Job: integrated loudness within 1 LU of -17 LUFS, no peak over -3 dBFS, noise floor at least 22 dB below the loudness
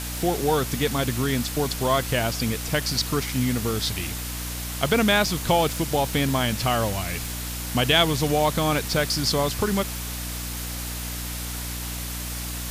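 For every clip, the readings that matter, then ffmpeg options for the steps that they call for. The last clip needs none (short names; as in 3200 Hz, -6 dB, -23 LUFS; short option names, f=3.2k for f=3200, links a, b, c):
hum 60 Hz; harmonics up to 300 Hz; hum level -31 dBFS; noise floor -32 dBFS; noise floor target -47 dBFS; loudness -24.5 LUFS; peak -6.0 dBFS; loudness target -17.0 LUFS
-> -af "bandreject=f=60:t=h:w=6,bandreject=f=120:t=h:w=6,bandreject=f=180:t=h:w=6,bandreject=f=240:t=h:w=6,bandreject=f=300:t=h:w=6"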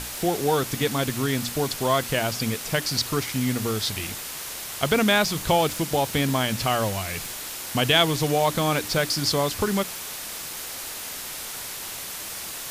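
hum none; noise floor -35 dBFS; noise floor target -47 dBFS
-> -af "afftdn=nr=12:nf=-35"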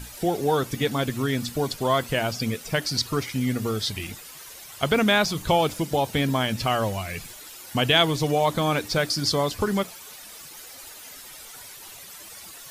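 noise floor -43 dBFS; noise floor target -47 dBFS
-> -af "afftdn=nr=6:nf=-43"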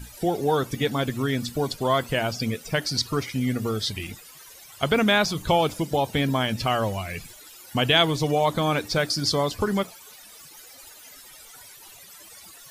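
noise floor -47 dBFS; loudness -24.5 LUFS; peak -6.0 dBFS; loudness target -17.0 LUFS
-> -af "volume=7.5dB,alimiter=limit=-3dB:level=0:latency=1"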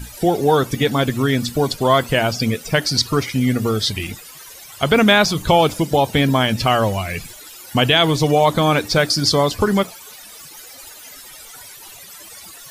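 loudness -17.5 LUFS; peak -3.0 dBFS; noise floor -40 dBFS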